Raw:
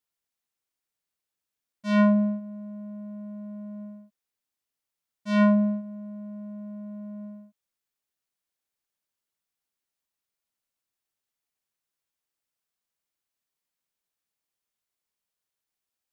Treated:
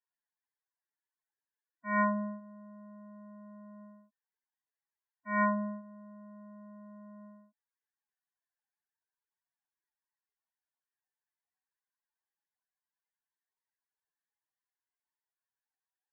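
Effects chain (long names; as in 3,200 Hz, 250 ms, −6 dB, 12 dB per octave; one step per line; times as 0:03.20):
high-pass filter 340 Hz 6 dB per octave
high shelf with overshoot 2,500 Hz −13 dB, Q 1.5
spectral peaks only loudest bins 16
phaser with its sweep stopped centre 860 Hz, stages 8
level +2.5 dB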